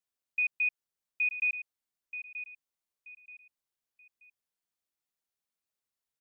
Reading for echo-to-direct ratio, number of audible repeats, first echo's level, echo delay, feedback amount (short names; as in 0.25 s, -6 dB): -10.5 dB, 3, -11.0 dB, 0.93 s, 31%